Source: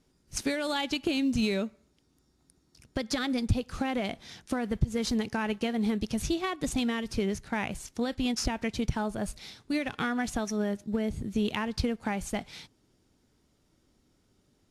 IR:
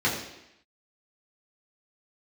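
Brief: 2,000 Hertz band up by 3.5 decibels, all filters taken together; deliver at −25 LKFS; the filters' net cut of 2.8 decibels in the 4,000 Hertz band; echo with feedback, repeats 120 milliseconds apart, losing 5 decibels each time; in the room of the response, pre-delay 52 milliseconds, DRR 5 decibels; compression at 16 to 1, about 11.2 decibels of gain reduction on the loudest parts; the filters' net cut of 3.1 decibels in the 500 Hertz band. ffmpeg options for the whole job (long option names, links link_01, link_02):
-filter_complex "[0:a]equalizer=frequency=500:width_type=o:gain=-4,equalizer=frequency=2000:width_type=o:gain=6,equalizer=frequency=4000:width_type=o:gain=-6,acompressor=threshold=-31dB:ratio=16,aecho=1:1:120|240|360|480|600|720|840:0.562|0.315|0.176|0.0988|0.0553|0.031|0.0173,asplit=2[link_01][link_02];[1:a]atrim=start_sample=2205,adelay=52[link_03];[link_02][link_03]afir=irnorm=-1:irlink=0,volume=-18.5dB[link_04];[link_01][link_04]amix=inputs=2:normalize=0,volume=8.5dB"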